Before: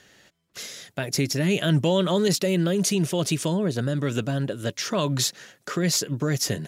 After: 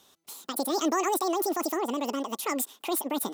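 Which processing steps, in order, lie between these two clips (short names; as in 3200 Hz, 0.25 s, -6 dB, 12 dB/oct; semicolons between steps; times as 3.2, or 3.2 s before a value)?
speed mistake 7.5 ips tape played at 15 ips; gain -5 dB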